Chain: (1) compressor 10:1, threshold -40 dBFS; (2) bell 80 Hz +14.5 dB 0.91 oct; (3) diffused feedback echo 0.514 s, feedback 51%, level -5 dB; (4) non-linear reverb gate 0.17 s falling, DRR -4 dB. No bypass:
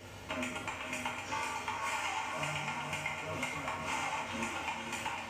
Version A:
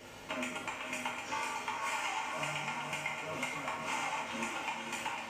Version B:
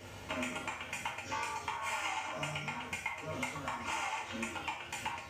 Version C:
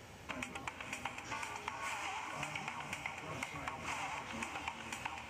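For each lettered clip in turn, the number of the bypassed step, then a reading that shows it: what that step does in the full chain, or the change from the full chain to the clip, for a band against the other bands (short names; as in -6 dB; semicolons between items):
2, 125 Hz band -5.0 dB; 3, echo-to-direct 6.0 dB to 4.0 dB; 4, echo-to-direct 6.0 dB to -3.5 dB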